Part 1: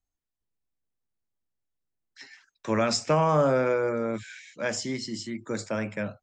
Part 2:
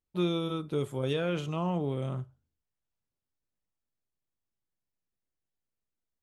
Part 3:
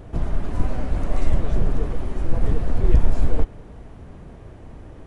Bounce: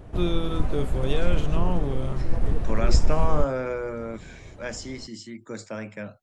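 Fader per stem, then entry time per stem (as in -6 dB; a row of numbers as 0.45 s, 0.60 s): -4.5 dB, +2.0 dB, -3.5 dB; 0.00 s, 0.00 s, 0.00 s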